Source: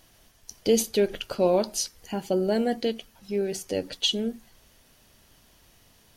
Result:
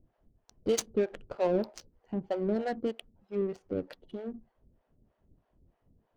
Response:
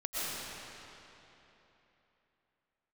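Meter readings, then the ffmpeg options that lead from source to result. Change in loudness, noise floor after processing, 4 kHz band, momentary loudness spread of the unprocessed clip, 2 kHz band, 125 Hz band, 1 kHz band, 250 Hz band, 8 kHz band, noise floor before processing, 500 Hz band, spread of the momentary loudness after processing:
−7.0 dB, −78 dBFS, −17.5 dB, 9 LU, −7.0 dB, −4.5 dB, −6.0 dB, −6.0 dB, −10.5 dB, −60 dBFS, −6.0 dB, 14 LU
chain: -filter_complex "[0:a]acrossover=split=500[link_01][link_02];[link_01]aeval=exprs='val(0)*(1-1/2+1/2*cos(2*PI*3.2*n/s))':channel_layout=same[link_03];[link_02]aeval=exprs='val(0)*(1-1/2-1/2*cos(2*PI*3.2*n/s))':channel_layout=same[link_04];[link_03][link_04]amix=inputs=2:normalize=0,adynamicsmooth=sensitivity=4.5:basefreq=630"

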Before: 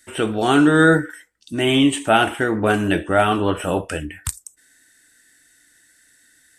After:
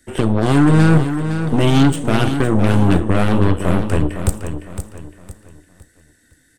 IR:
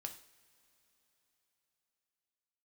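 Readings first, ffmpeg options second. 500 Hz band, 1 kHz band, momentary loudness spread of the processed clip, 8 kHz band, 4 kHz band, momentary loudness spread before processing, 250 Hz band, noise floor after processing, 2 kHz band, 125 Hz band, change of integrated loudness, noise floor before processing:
−1.0 dB, −2.5 dB, 16 LU, −1.5 dB, −3.5 dB, 15 LU, +3.5 dB, −57 dBFS, −5.0 dB, +11.5 dB, +2.5 dB, −57 dBFS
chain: -filter_complex "[0:a]tiltshelf=frequency=640:gain=8.5,acrossover=split=200|3000[link_01][link_02][link_03];[link_02]acompressor=threshold=-23dB:ratio=6[link_04];[link_01][link_04][link_03]amix=inputs=3:normalize=0,aeval=exprs='0.398*(cos(1*acos(clip(val(0)/0.398,-1,1)))-cos(1*PI/2))+0.0631*(cos(8*acos(clip(val(0)/0.398,-1,1)))-cos(8*PI/2))':channel_layout=same,aecho=1:1:510|1020|1530|2040:0.355|0.124|0.0435|0.0152,asplit=2[link_05][link_06];[1:a]atrim=start_sample=2205[link_07];[link_06][link_07]afir=irnorm=-1:irlink=0,volume=-6.5dB[link_08];[link_05][link_08]amix=inputs=2:normalize=0,volume=2dB"

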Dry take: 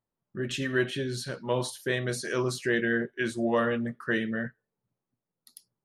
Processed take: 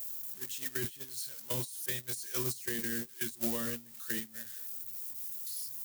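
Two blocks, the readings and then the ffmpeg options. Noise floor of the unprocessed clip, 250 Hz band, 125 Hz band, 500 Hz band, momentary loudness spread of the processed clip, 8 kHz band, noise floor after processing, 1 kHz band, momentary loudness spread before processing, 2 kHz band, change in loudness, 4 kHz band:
below −85 dBFS, −12.0 dB, −10.5 dB, −15.0 dB, 6 LU, +3.0 dB, −53 dBFS, −15.0 dB, 8 LU, −13.0 dB, −6.0 dB, −6.0 dB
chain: -filter_complex "[0:a]aeval=exprs='val(0)+0.5*0.0355*sgn(val(0))':channel_layout=same,acrossover=split=9100[link_01][link_02];[link_02]acompressor=threshold=-47dB:ratio=4:attack=1:release=60[link_03];[link_01][link_03]amix=inputs=2:normalize=0,agate=range=-32dB:threshold=-23dB:ratio=16:detection=peak,crystalizer=i=8.5:c=0,alimiter=limit=-18dB:level=0:latency=1,acrossover=split=310[link_04][link_05];[link_05]acompressor=threshold=-41dB:ratio=6[link_06];[link_04][link_06]amix=inputs=2:normalize=0,aemphasis=mode=production:type=50fm"

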